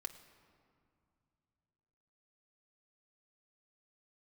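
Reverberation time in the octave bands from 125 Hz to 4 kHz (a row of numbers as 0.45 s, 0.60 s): 3.7 s, 3.1 s, 2.3 s, 2.4 s, 1.8 s, 1.3 s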